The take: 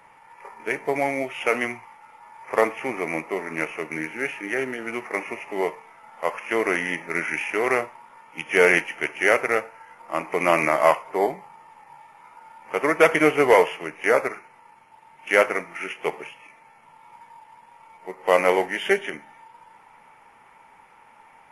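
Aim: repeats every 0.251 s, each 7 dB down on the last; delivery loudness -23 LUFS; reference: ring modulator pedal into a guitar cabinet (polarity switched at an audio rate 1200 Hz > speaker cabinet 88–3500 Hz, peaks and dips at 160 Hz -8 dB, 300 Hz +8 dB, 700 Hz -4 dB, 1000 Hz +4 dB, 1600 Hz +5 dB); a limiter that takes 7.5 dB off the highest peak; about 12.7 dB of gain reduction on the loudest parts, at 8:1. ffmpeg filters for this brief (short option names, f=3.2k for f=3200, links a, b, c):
-af "acompressor=threshold=-24dB:ratio=8,alimiter=limit=-18dB:level=0:latency=1,aecho=1:1:251|502|753|1004|1255:0.447|0.201|0.0905|0.0407|0.0183,aeval=exprs='val(0)*sgn(sin(2*PI*1200*n/s))':c=same,highpass=88,equalizer=f=160:t=q:w=4:g=-8,equalizer=f=300:t=q:w=4:g=8,equalizer=f=700:t=q:w=4:g=-4,equalizer=f=1k:t=q:w=4:g=4,equalizer=f=1.6k:t=q:w=4:g=5,lowpass=f=3.5k:w=0.5412,lowpass=f=3.5k:w=1.3066,volume=7dB"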